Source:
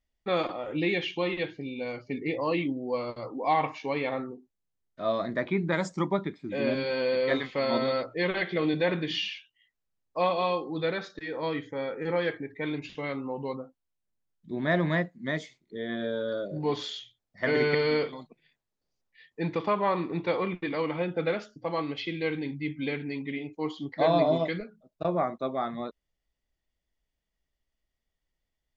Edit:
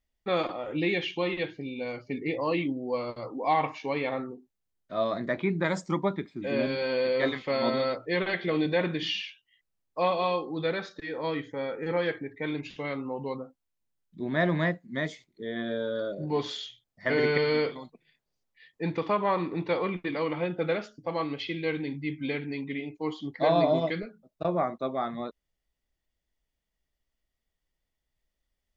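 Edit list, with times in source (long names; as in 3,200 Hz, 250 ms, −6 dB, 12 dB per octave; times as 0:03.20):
compress silence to 80%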